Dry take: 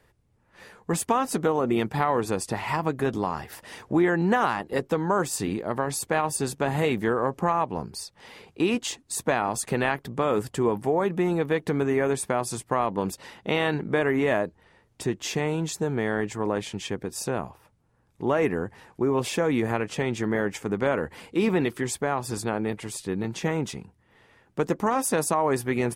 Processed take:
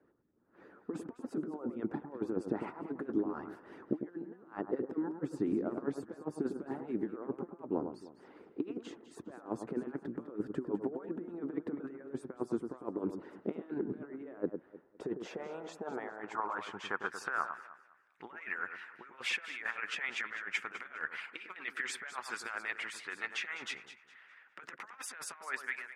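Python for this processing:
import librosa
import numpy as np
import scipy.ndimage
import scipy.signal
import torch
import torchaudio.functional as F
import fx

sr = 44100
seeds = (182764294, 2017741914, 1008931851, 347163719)

p1 = fx.fade_out_tail(x, sr, length_s=0.71)
p2 = fx.peak_eq(p1, sr, hz=1400.0, db=12.0, octaves=0.56)
p3 = fx.over_compress(p2, sr, threshold_db=-27.0, ratio=-0.5)
p4 = fx.hpss(p3, sr, part='harmonic', gain_db=-16)
p5 = fx.filter_sweep_bandpass(p4, sr, from_hz=320.0, to_hz=2200.0, start_s=14.45, end_s=18.03, q=2.3)
p6 = p5 + fx.echo_alternate(p5, sr, ms=102, hz=1500.0, feedback_pct=52, wet_db=-7, dry=0)
y = p6 * librosa.db_to_amplitude(1.0)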